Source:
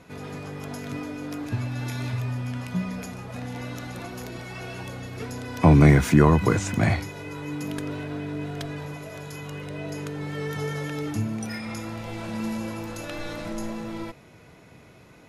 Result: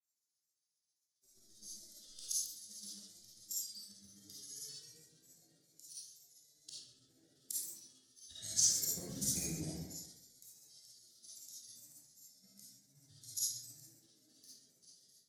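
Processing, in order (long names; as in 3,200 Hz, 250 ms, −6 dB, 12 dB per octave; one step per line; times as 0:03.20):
played backwards from end to start
inverse Chebyshev high-pass filter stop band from 2,800 Hz, stop band 40 dB
granular cloud 87 ms, grains 7.5 per second, spray 24 ms, pitch spread up and down by 3 semitones
comb and all-pass reverb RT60 1.4 s, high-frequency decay 0.6×, pre-delay 10 ms, DRR −8.5 dB
hard clipping −30 dBFS, distortion −30 dB
multiband upward and downward expander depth 100%
level +1 dB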